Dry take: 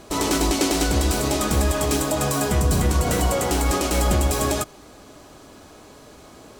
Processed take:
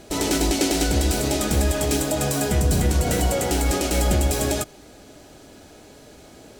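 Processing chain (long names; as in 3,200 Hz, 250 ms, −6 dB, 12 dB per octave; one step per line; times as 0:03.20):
parametric band 1,100 Hz −12 dB 0.35 octaves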